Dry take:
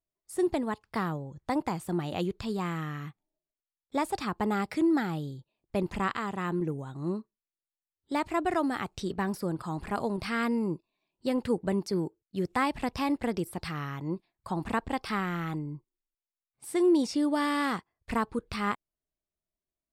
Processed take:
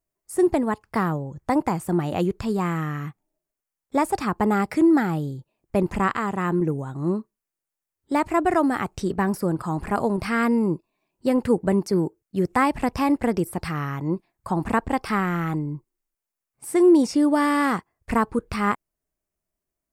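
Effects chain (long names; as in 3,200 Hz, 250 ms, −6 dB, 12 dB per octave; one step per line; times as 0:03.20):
parametric band 3,700 Hz −9.5 dB 0.91 octaves
level +8 dB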